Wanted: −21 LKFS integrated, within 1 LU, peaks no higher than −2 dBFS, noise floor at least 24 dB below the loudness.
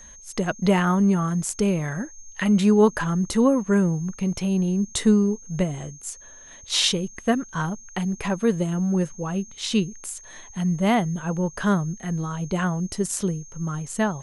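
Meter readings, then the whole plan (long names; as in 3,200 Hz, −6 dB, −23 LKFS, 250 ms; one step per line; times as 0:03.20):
interfering tone 6,400 Hz; level of the tone −44 dBFS; integrated loudness −23.5 LKFS; sample peak −5.5 dBFS; target loudness −21.0 LKFS
→ notch filter 6,400 Hz, Q 30
level +2.5 dB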